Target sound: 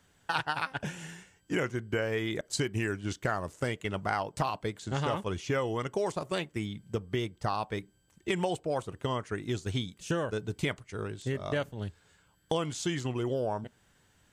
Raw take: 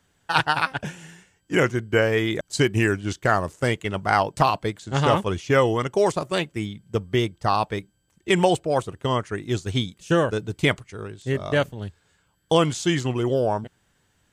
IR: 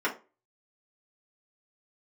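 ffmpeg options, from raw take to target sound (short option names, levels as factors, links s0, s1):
-filter_complex "[0:a]acompressor=threshold=0.0282:ratio=3,asplit=2[s0][s1];[1:a]atrim=start_sample=2205[s2];[s1][s2]afir=irnorm=-1:irlink=0,volume=0.0282[s3];[s0][s3]amix=inputs=2:normalize=0"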